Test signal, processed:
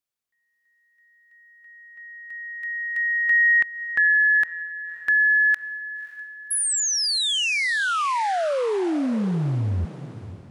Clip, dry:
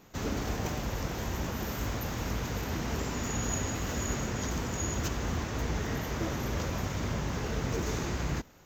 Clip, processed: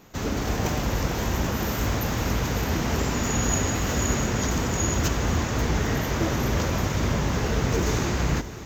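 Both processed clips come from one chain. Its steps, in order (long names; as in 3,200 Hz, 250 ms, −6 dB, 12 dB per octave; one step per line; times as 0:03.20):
feedback delay with all-pass diffusion 571 ms, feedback 44%, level −14 dB
automatic gain control gain up to 3 dB
level +5 dB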